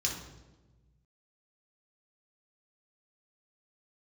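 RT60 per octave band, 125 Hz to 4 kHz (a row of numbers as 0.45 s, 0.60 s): 2.0 s, 1.6 s, 1.4 s, 1.0 s, 0.85 s, 0.80 s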